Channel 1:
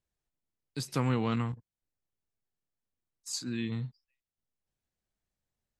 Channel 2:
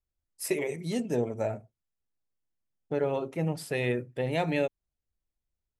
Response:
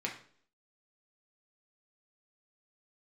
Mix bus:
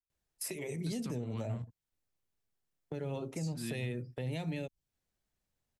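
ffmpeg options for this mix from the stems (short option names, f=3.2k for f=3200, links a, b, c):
-filter_complex "[0:a]alimiter=level_in=1dB:limit=-24dB:level=0:latency=1:release=330,volume=-1dB,adelay=100,volume=2.5dB[a];[1:a]agate=range=-22dB:threshold=-45dB:ratio=16:detection=peak,acontrast=36,adynamicequalizer=threshold=0.00891:dfrequency=1600:dqfactor=0.7:tfrequency=1600:tqfactor=0.7:attack=5:release=100:ratio=0.375:range=3.5:mode=cutabove:tftype=highshelf,volume=0dB,asplit=2[b][c];[c]apad=whole_len=259890[d];[a][d]sidechaincompress=threshold=-25dB:ratio=8:attack=16:release=147[e];[e][b]amix=inputs=2:normalize=0,acrossover=split=220|3000[f][g][h];[g]acompressor=threshold=-35dB:ratio=6[i];[f][i][h]amix=inputs=3:normalize=0,alimiter=level_in=4.5dB:limit=-24dB:level=0:latency=1:release=397,volume=-4.5dB"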